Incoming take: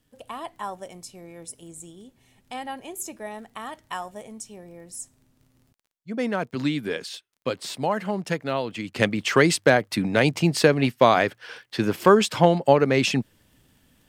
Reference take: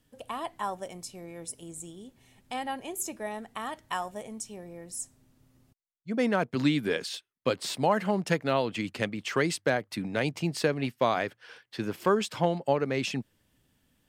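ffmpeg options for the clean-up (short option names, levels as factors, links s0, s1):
-af "adeclick=t=4,asetnsamples=n=441:p=0,asendcmd='8.96 volume volume -9dB',volume=1"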